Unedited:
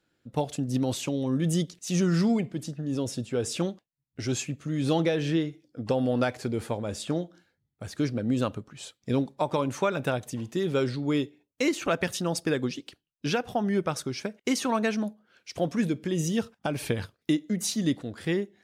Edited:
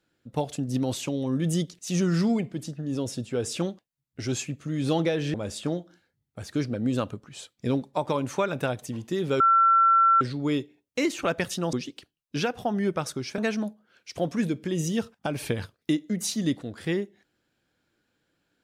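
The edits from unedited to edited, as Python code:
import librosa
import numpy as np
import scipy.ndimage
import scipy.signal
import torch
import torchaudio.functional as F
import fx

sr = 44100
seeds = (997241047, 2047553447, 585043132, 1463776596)

y = fx.edit(x, sr, fx.cut(start_s=5.34, length_s=1.44),
    fx.insert_tone(at_s=10.84, length_s=0.81, hz=1350.0, db=-15.5),
    fx.cut(start_s=12.36, length_s=0.27),
    fx.cut(start_s=14.28, length_s=0.5), tone=tone)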